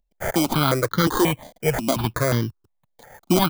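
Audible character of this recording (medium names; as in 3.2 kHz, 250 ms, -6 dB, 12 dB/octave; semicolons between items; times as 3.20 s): aliases and images of a low sample rate 2.7 kHz, jitter 0%; notches that jump at a steady rate 5.6 Hz 350–2500 Hz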